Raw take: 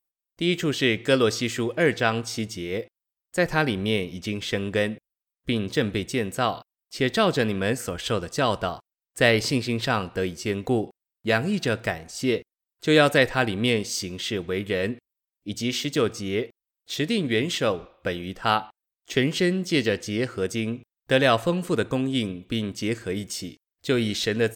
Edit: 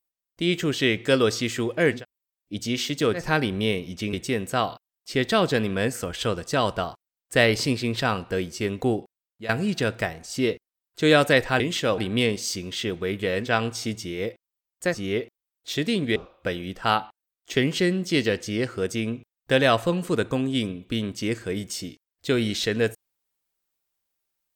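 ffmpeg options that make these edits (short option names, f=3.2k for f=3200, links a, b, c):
-filter_complex "[0:a]asplit=10[a][b][c][d][e][f][g][h][i][j];[a]atrim=end=2.05[k];[b]atrim=start=14.84:end=16.23[l];[c]atrim=start=3.37:end=4.382[m];[d]atrim=start=5.978:end=11.34,asetpts=PTS-STARTPTS,afade=t=out:st=4.782:d=0.58:silence=0.16788[n];[e]atrim=start=11.34:end=13.452,asetpts=PTS-STARTPTS,afade=t=in:d=0.004:c=hsin:silence=0.16788[o];[f]atrim=start=17.378:end=17.762[p];[g]atrim=start=13.448:end=15[q];[h]atrim=start=1.89:end=3.53[r];[i]atrim=start=16.07:end=17.382[s];[j]atrim=start=17.758[t];[k][l]acrossfade=d=0.16:c1=tri:c2=tri[u];[u][m]acrossfade=d=0.16:c1=tri:c2=tri[v];[n][o]concat=n=2:v=0:a=1[w];[v][w]acrossfade=d=0.004:c1=hsin:c2=hsin[x];[x][p]acrossfade=d=0.004:c1=hsin:c2=hsin[y];[y][q]acrossfade=d=0.004:c1=hsin:c2=hsin[z];[z][r]acrossfade=d=0.16:c1=tri:c2=tri[aa];[aa][s]acrossfade=d=0.16:c1=tri:c2=tri[ab];[ab][t]acrossfade=d=0.004:c1=hsin:c2=hsin"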